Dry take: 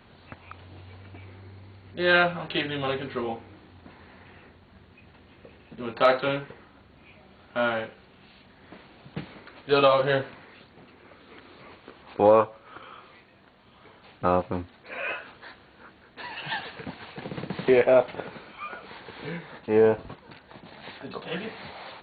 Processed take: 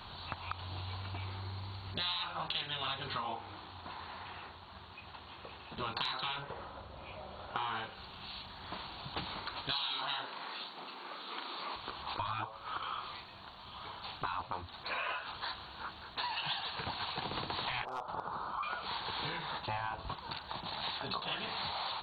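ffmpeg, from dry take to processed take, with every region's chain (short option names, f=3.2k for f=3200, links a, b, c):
-filter_complex "[0:a]asettb=1/sr,asplit=3[a][b][c];[a]atrim=end=3.184[d];[b]atrim=start=3.18:end=5.77,asetpts=PTS-STARTPTS,afade=t=in:d=0.004:c=qsin,afade=t=out:st=2.586:d=0.004:c=qsin,highpass=50,bass=f=250:g=-6,treble=f=4k:g=-6[e];[c]atrim=start=5.766[f];[d][e]acrossfade=d=0.004:c1=hsin:c2=qsin[g];[g][f]acrossfade=d=0.004:c1=qsin:c2=hsin,asettb=1/sr,asplit=3[h][i][j];[h]atrim=end=6.424[k];[i]atrim=start=6.42:end=7.75,asetpts=PTS-STARTPTS,afade=t=in:d=0.004:c=qsin,afade=t=out:st=1.326:d=0.004:c=qsin,lowpass=f=2.4k:p=1,equalizer=f=540:w=2.6:g=12.5[l];[j]atrim=start=7.746[m];[k][l]acrossfade=d=0.004:c1=hsin:c2=qsin[n];[n][m]acrossfade=d=0.004:c1=qsin:c2=hsin,asettb=1/sr,asplit=3[o][p][q];[o]atrim=end=9.714[r];[p]atrim=start=9.71:end=11.76,asetpts=PTS-STARTPTS,afade=t=in:d=0.004:c=qsin,afade=t=out:st=2.046:d=0.004:c=qsin,highpass=f=210:w=0.5412,highpass=f=210:w=1.3066,asplit=2[s][t];[t]adelay=40,volume=-5dB[u];[s][u]amix=inputs=2:normalize=0,atrim=end_sample=90405[v];[q]atrim=start=11.756[w];[r][v]acrossfade=d=0.004:c1=hsin:c2=qsin[x];[x][w]acrossfade=d=0.004:c1=qsin:c2=hsin,asettb=1/sr,asplit=3[y][z][aa];[y]atrim=end=17.854[ab];[z]atrim=start=17.85:end=18.63,asetpts=PTS-STARTPTS,afade=t=in:d=0.004:c=qsin,afade=t=out:st=0.776:d=0.004:c=qsin,acompressor=threshold=-43dB:ratio=2:attack=3.2:release=140:knee=1:detection=peak,highshelf=f=1.6k:t=q:w=3:g=-10,volume=25dB,asoftclip=hard,volume=-25dB[ac];[aa]atrim=start=18.626[ad];[ab][ac]acrossfade=d=0.004:c1=hsin:c2=qsin[ae];[ae][ad]acrossfade=d=0.004:c1=qsin:c2=hsin,afftfilt=real='re*lt(hypot(re,im),0.158)':imag='im*lt(hypot(re,im),0.158)':win_size=1024:overlap=0.75,equalizer=f=125:t=o:w=1:g=-4,equalizer=f=250:t=o:w=1:g=-10,equalizer=f=500:t=o:w=1:g=-10,equalizer=f=1k:t=o:w=1:g=7,equalizer=f=2k:t=o:w=1:g=-10,equalizer=f=4k:t=o:w=1:g=8,acompressor=threshold=-43dB:ratio=6,volume=8dB"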